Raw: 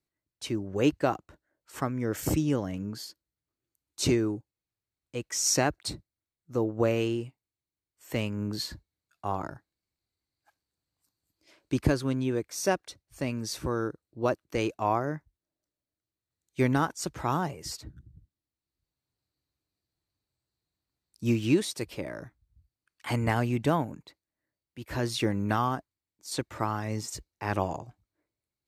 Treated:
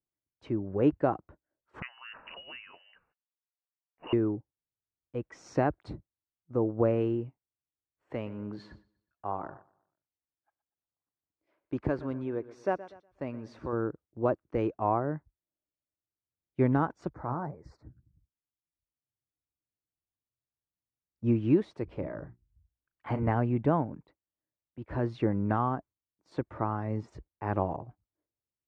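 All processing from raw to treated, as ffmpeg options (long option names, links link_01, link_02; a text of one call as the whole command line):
ffmpeg -i in.wav -filter_complex "[0:a]asettb=1/sr,asplit=3[link_01][link_02][link_03];[link_01]atrim=end=1.824[link_04];[link_02]atrim=start=1.82:end=4.13,asetpts=PTS-STARTPTS,afade=type=in:duration=0.004:curve=qsin,afade=type=out:start_time=2.306:duration=0.004:curve=qsin,highpass=frequency=350:width=0.5412,highpass=frequency=350:width=1.3066,lowpass=frequency=2700:width_type=q:width=0.5098,lowpass=frequency=2700:width_type=q:width=0.6013,lowpass=frequency=2700:width_type=q:width=0.9,lowpass=frequency=2700:width_type=q:width=2.563,afreqshift=-3200[link_05];[link_03]atrim=start=4.126[link_06];[link_04][link_05]acrossfade=duration=0.004:curve1=hsin:curve2=qsin[link_07];[link_07][link_06]acrossfade=duration=0.004:curve1=qsin:curve2=hsin,asettb=1/sr,asplit=3[link_08][link_09][link_10];[link_08]atrim=end=8.134[link_11];[link_09]atrim=start=8.13:end=13.73,asetpts=PTS-STARTPTS,afade=type=in:duration=0.004:curve=qsin,afade=type=out:start_time=5.596:duration=0.004:curve=qsin,lowshelf=frequency=320:gain=-9.5,aecho=1:1:121|242|363|484:0.15|0.0628|0.0264|0.0111,atrim=end_sample=246960[link_12];[link_10]atrim=start=13.726[link_13];[link_11][link_12]acrossfade=duration=0.004:curve1=hsin:curve2=qsin[link_14];[link_14][link_13]acrossfade=duration=0.004:curve1=qsin:curve2=hsin,asettb=1/sr,asplit=3[link_15][link_16][link_17];[link_15]atrim=end=17.094[link_18];[link_16]atrim=start=17.09:end=21.24,asetpts=PTS-STARTPTS,afade=type=in:duration=0.004:curve=qsin,afade=type=out:start_time=4.146:duration=0.004:curve=qsin,equalizer=frequency=390:width_type=o:width=0.26:gain=-3.5,flanger=delay=1.7:depth=7.3:regen=53:speed=1.7:shape=sinusoidal,asuperstop=centerf=3000:order=4:qfactor=1.3[link_19];[link_17]atrim=start=21.236[link_20];[link_18][link_19]acrossfade=duration=0.004:curve1=hsin:curve2=qsin[link_21];[link_21][link_20]acrossfade=duration=0.004:curve1=qsin:curve2=hsin,asettb=1/sr,asplit=3[link_22][link_23][link_24];[link_22]atrim=end=21.844[link_25];[link_23]atrim=start=21.84:end=23.23,asetpts=PTS-STARTPTS,afade=type=in:duration=0.004:curve=qsin,afade=type=out:start_time=1.386:duration=0.004:curve=qsin,lowshelf=frequency=88:gain=8.5,bandreject=frequency=60:width_type=h:width=6,bandreject=frequency=120:width_type=h:width=6,bandreject=frequency=180:width_type=h:width=6,bandreject=frequency=240:width_type=h:width=6,bandreject=frequency=300:width_type=h:width=6,bandreject=frequency=360:width_type=h:width=6,asplit=2[link_26][link_27];[link_27]adelay=37,volume=-11.5dB[link_28];[link_26][link_28]amix=inputs=2:normalize=0,atrim=end_sample=61299[link_29];[link_24]atrim=start=23.226[link_30];[link_25][link_29]acrossfade=duration=0.004:curve1=hsin:curve2=qsin[link_31];[link_31][link_30]acrossfade=duration=0.004:curve1=qsin:curve2=hsin,agate=range=-8dB:threshold=-50dB:ratio=16:detection=peak,lowpass=1200" out.wav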